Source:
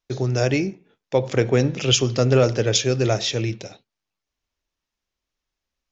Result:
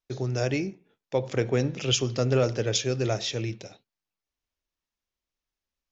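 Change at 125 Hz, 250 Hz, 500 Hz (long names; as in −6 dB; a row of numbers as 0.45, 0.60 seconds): −6.5, −6.5, −6.5 decibels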